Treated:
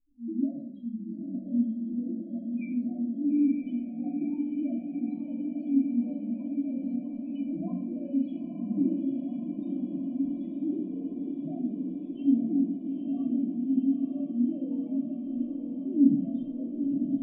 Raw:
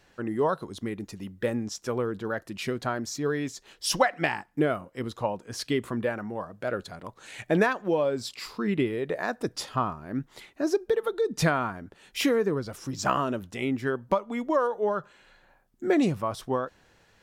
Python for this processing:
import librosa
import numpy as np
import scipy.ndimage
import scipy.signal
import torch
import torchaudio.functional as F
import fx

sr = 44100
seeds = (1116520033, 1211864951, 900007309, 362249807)

p1 = fx.fixed_phaser(x, sr, hz=420.0, stages=6)
p2 = fx.rider(p1, sr, range_db=5, speed_s=0.5)
p3 = p1 + (p2 * 10.0 ** (-1.0 / 20.0))
p4 = fx.spec_topn(p3, sr, count=1)
p5 = fx.transient(p4, sr, attack_db=-11, sustain_db=2)
p6 = fx.formant_cascade(p5, sr, vowel='i')
p7 = fx.doubler(p6, sr, ms=21.0, db=-14.0)
p8 = p7 + fx.echo_diffused(p7, sr, ms=934, feedback_pct=77, wet_db=-5, dry=0)
p9 = fx.room_shoebox(p8, sr, seeds[0], volume_m3=960.0, walls='furnished', distance_m=3.0)
y = p9 * 10.0 ** (4.0 / 20.0)